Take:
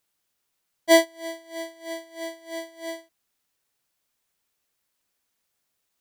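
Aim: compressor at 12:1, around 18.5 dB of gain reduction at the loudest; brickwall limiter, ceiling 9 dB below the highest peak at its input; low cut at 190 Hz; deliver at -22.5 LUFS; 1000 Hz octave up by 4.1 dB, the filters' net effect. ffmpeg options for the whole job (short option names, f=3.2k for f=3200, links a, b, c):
-af "highpass=190,equalizer=f=1k:t=o:g=6,acompressor=threshold=-27dB:ratio=12,volume=16dB,alimiter=limit=-9dB:level=0:latency=1"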